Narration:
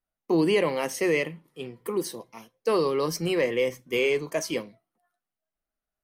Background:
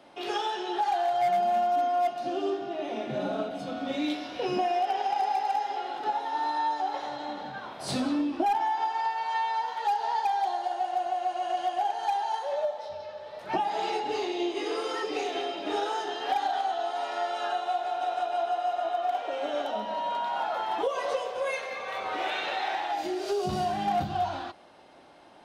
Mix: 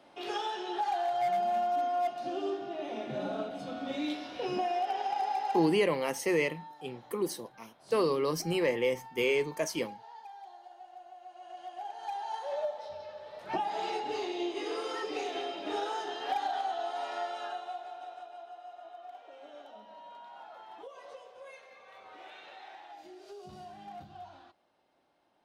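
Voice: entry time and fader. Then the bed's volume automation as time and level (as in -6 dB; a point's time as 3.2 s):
5.25 s, -4.0 dB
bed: 5.62 s -4.5 dB
5.88 s -21 dB
11.2 s -21 dB
12.52 s -4.5 dB
17.15 s -4.5 dB
18.43 s -19 dB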